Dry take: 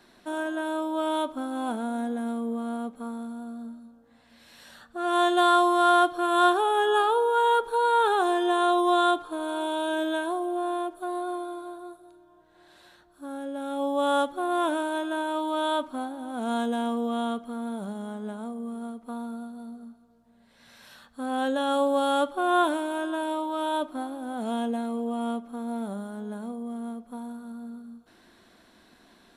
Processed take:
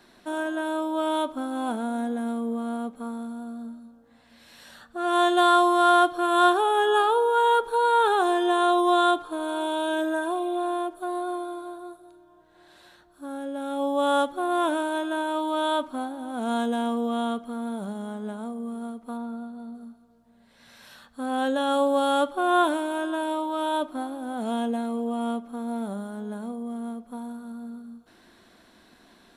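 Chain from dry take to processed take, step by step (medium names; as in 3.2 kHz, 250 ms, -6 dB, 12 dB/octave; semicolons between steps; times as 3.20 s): 10.04–10.65 s: spectral replace 2–4.2 kHz after; 19.16–19.74 s: treble shelf 4.1 kHz -> 6.5 kHz -12 dB; trim +1.5 dB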